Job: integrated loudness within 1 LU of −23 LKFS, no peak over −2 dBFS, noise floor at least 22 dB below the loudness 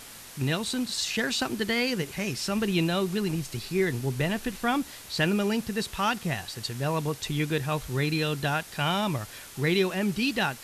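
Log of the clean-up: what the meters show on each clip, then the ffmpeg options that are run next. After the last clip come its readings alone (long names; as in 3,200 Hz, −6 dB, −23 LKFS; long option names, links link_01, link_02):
background noise floor −45 dBFS; target noise floor −50 dBFS; integrated loudness −28.0 LKFS; sample peak −12.0 dBFS; target loudness −23.0 LKFS
→ -af "afftdn=noise_reduction=6:noise_floor=-45"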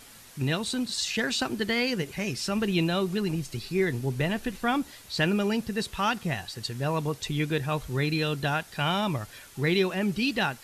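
background noise floor −50 dBFS; integrated loudness −28.0 LKFS; sample peak −12.0 dBFS; target loudness −23.0 LKFS
→ -af "volume=5dB"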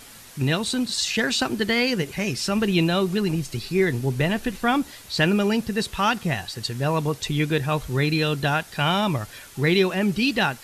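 integrated loudness −23.0 LKFS; sample peak −7.0 dBFS; background noise floor −45 dBFS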